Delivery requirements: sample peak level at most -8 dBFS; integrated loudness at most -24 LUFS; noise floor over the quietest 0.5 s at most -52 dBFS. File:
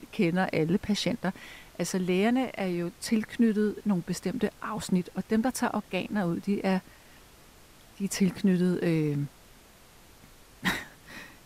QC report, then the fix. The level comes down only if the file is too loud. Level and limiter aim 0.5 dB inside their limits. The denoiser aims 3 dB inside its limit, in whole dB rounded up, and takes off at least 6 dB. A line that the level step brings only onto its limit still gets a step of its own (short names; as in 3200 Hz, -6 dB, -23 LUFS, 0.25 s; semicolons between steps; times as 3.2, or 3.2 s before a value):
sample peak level -14.0 dBFS: OK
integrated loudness -29.0 LUFS: OK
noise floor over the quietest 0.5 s -55 dBFS: OK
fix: none